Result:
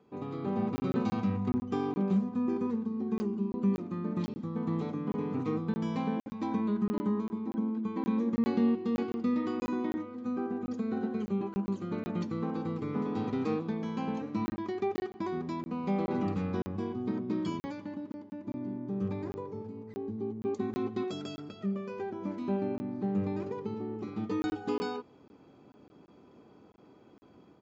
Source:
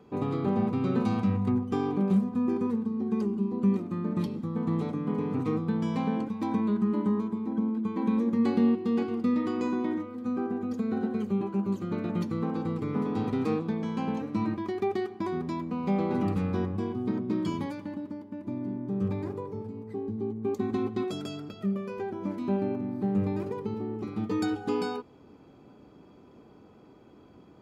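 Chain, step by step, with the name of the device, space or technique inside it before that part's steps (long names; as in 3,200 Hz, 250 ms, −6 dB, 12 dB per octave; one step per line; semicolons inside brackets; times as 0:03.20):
call with lost packets (high-pass filter 110 Hz 6 dB per octave; downsampling to 16,000 Hz; automatic gain control gain up to 6 dB; dropped packets of 20 ms random)
level −8.5 dB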